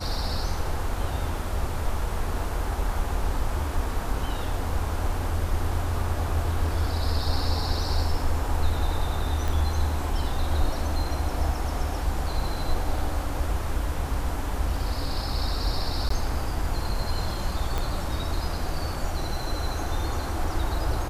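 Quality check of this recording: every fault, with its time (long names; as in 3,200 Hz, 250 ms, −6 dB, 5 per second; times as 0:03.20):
0:09.48: click
0:16.09–0:16.10: drop-out 14 ms
0:17.78: click −14 dBFS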